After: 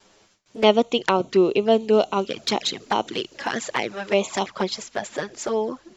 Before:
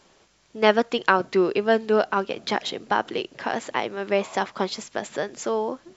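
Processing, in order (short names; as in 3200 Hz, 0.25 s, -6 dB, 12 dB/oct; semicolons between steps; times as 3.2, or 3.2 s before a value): gate with hold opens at -50 dBFS; high shelf 4600 Hz +4 dB, from 1.93 s +11.5 dB, from 4.46 s +3 dB; envelope flanger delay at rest 10.2 ms, full sweep at -19.5 dBFS; gain +3.5 dB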